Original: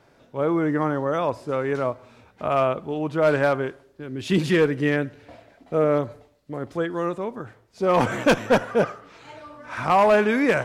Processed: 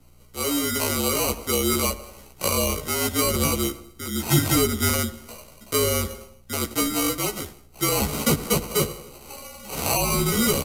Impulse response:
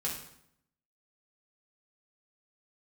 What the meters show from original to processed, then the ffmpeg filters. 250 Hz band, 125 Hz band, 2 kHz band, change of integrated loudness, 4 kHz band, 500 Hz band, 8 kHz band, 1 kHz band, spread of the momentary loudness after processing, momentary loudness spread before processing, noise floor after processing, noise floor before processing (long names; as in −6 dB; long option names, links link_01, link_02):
−1.0 dB, +2.5 dB, −3.0 dB, 0.0 dB, +10.0 dB, −5.5 dB, +21.5 dB, −4.5 dB, 17 LU, 17 LU, −50 dBFS, −58 dBFS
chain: -filter_complex "[0:a]acrossover=split=580|1100[link_01][link_02][link_03];[link_02]aeval=exprs='max(val(0),0)':channel_layout=same[link_04];[link_01][link_04][link_03]amix=inputs=3:normalize=0,acrusher=samples=25:mix=1:aa=0.000001,asplit=2[link_05][link_06];[link_06]adelay=91,lowpass=frequency=1600:poles=1,volume=-17dB,asplit=2[link_07][link_08];[link_08]adelay=91,lowpass=frequency=1600:poles=1,volume=0.49,asplit=2[link_09][link_10];[link_10]adelay=91,lowpass=frequency=1600:poles=1,volume=0.49,asplit=2[link_11][link_12];[link_12]adelay=91,lowpass=frequency=1600:poles=1,volume=0.49[link_13];[link_07][link_09][link_11][link_13]amix=inputs=4:normalize=0[link_14];[link_05][link_14]amix=inputs=2:normalize=0,dynaudnorm=framelen=620:gausssize=3:maxgain=11.5dB,aeval=exprs='val(0)+0.00891*(sin(2*PI*60*n/s)+sin(2*PI*2*60*n/s)/2+sin(2*PI*3*60*n/s)/3+sin(2*PI*4*60*n/s)/4+sin(2*PI*5*60*n/s)/5)':channel_layout=same,lowshelf=frequency=120:gain=-10.5,acrossover=split=330[link_15][link_16];[link_16]acompressor=threshold=-19dB:ratio=10[link_17];[link_15][link_17]amix=inputs=2:normalize=0,asplit=2[link_18][link_19];[link_19]adelay=15,volume=-3dB[link_20];[link_18][link_20]amix=inputs=2:normalize=0,afreqshift=-50,aemphasis=mode=production:type=75kf,aresample=32000,aresample=44100,volume=-6dB"